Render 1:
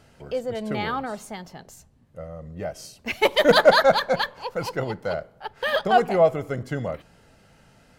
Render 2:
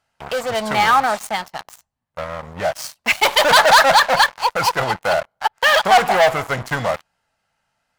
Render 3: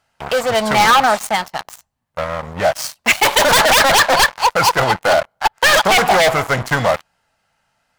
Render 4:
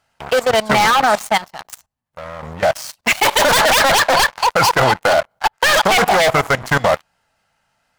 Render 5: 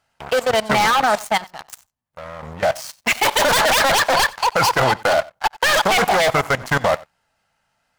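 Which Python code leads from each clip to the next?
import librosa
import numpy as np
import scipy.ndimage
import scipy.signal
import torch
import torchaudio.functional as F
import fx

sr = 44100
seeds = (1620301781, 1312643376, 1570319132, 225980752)

y1 = fx.leveller(x, sr, passes=5)
y1 = fx.low_shelf_res(y1, sr, hz=580.0, db=-10.5, q=1.5)
y1 = y1 * 10.0 ** (-3.5 / 20.0)
y2 = 10.0 ** (-11.0 / 20.0) * (np.abs((y1 / 10.0 ** (-11.0 / 20.0) + 3.0) % 4.0 - 2.0) - 1.0)
y2 = y2 * 10.0 ** (5.5 / 20.0)
y3 = fx.level_steps(y2, sr, step_db=18)
y3 = y3 * 10.0 ** (5.5 / 20.0)
y4 = y3 + 10.0 ** (-22.5 / 20.0) * np.pad(y3, (int(91 * sr / 1000.0), 0))[:len(y3)]
y4 = y4 * 10.0 ** (-3.0 / 20.0)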